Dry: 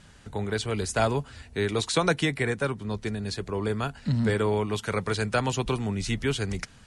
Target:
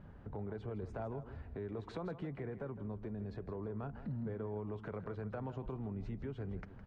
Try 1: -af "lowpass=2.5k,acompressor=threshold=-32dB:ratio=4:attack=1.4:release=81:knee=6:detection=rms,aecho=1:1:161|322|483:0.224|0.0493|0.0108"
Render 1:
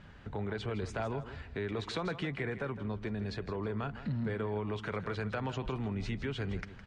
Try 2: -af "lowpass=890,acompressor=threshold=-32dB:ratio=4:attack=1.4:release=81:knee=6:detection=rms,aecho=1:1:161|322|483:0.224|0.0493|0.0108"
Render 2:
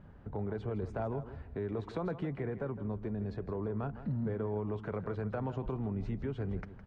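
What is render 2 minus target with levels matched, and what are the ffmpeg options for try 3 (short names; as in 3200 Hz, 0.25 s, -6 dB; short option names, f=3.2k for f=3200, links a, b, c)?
compressor: peak gain reduction -6 dB
-af "lowpass=890,acompressor=threshold=-40dB:ratio=4:attack=1.4:release=81:knee=6:detection=rms,aecho=1:1:161|322|483:0.224|0.0493|0.0108"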